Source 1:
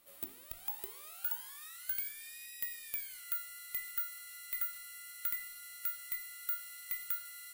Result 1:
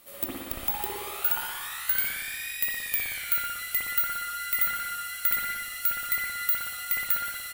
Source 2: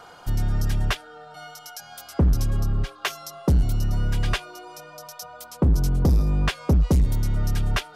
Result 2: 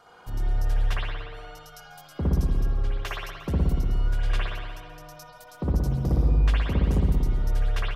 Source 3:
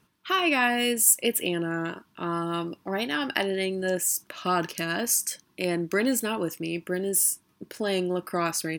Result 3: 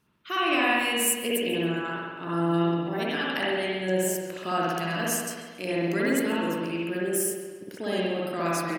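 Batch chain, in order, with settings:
echo from a far wall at 29 m, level -21 dB; spring tank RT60 1.5 s, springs 59 ms, chirp 45 ms, DRR -6 dB; modulated delay 136 ms, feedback 36%, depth 198 cents, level -17.5 dB; normalise loudness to -27 LUFS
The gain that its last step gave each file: +11.0 dB, -10.5 dB, -6.5 dB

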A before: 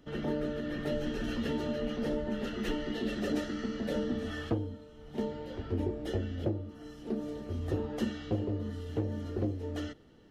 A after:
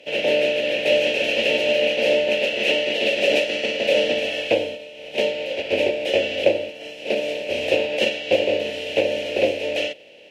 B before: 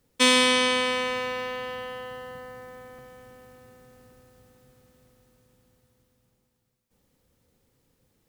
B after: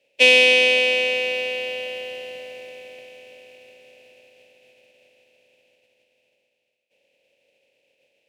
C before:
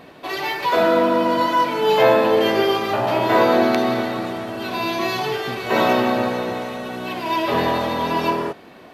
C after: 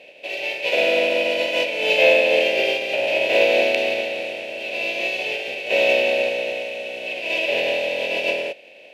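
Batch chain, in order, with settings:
spectral contrast reduction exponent 0.52; two resonant band-passes 1.2 kHz, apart 2.2 oct; peak normalisation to -3 dBFS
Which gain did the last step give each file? +24.0 dB, +15.5 dB, +8.0 dB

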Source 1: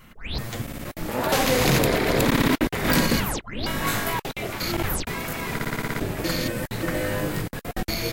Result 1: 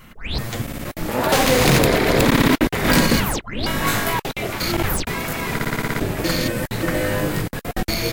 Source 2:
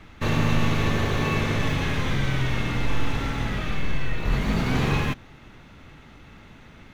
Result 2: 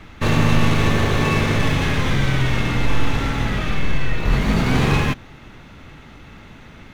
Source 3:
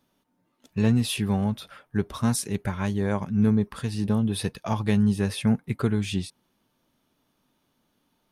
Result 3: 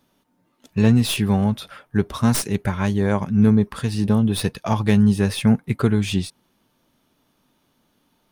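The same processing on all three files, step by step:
tracing distortion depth 0.04 ms; normalise loudness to -20 LUFS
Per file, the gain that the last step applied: +5.0 dB, +5.5 dB, +6.0 dB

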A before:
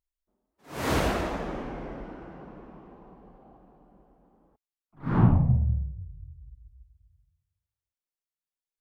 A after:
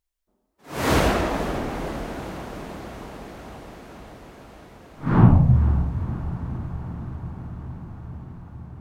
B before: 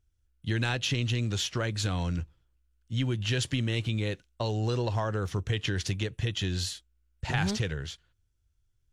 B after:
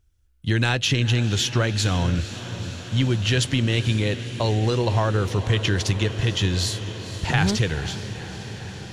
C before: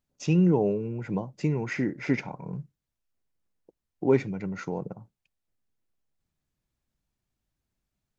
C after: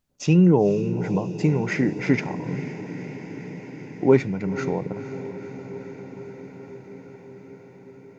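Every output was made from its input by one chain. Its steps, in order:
echo that smears into a reverb 492 ms, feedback 77%, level -13 dB; normalise loudness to -23 LUFS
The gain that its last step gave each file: +6.0 dB, +7.5 dB, +5.5 dB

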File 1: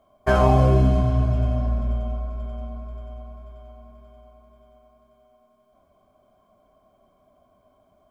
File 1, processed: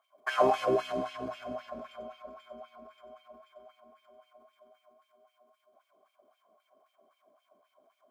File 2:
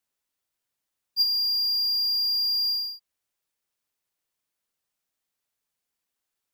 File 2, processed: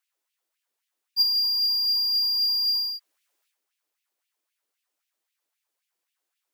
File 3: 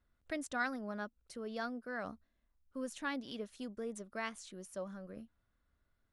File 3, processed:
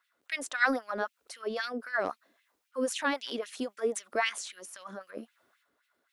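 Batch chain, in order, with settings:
LFO high-pass sine 3.8 Hz 310–2700 Hz; transient shaper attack +2 dB, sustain +7 dB; peak normalisation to -12 dBFS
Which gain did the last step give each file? -9.0 dB, 0.0 dB, +7.0 dB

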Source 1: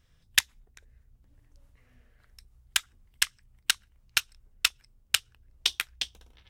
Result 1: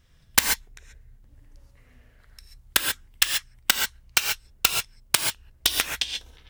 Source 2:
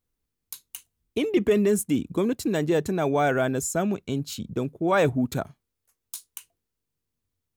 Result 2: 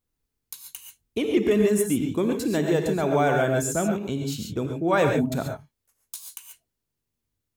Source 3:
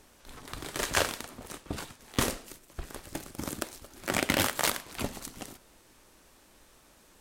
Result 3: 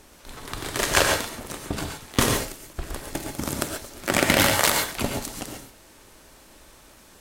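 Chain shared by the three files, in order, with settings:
integer overflow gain 7 dB; gated-style reverb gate 160 ms rising, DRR 3 dB; normalise loudness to -24 LUFS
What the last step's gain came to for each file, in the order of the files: +5.0 dB, -0.5 dB, +6.5 dB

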